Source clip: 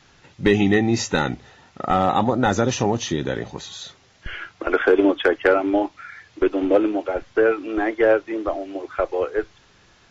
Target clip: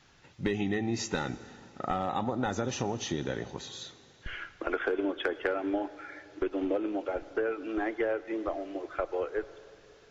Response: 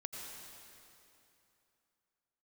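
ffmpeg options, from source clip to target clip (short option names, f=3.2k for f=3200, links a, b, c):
-filter_complex "[0:a]acompressor=threshold=-20dB:ratio=4,asplit=2[a][b];[1:a]atrim=start_sample=2205[c];[b][c]afir=irnorm=-1:irlink=0,volume=-11dB[d];[a][d]amix=inputs=2:normalize=0,volume=-8.5dB"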